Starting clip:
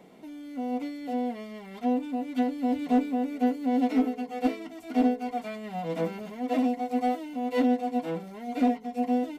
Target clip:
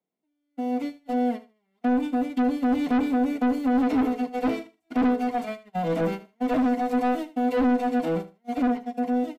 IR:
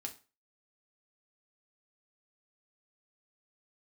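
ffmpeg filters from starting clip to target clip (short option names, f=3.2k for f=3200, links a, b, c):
-filter_complex "[0:a]highpass=f=41:p=1,agate=range=-39dB:threshold=-34dB:ratio=16:detection=peak,acrossover=split=170|880[a][b][c];[c]alimiter=level_in=15.5dB:limit=-24dB:level=0:latency=1:release=49,volume=-15.5dB[d];[a][b][d]amix=inputs=3:normalize=0,dynaudnorm=f=180:g=13:m=5.5dB,asoftclip=type=tanh:threshold=-22.5dB,aecho=1:1:77|154:0.158|0.0301,volume=3.5dB"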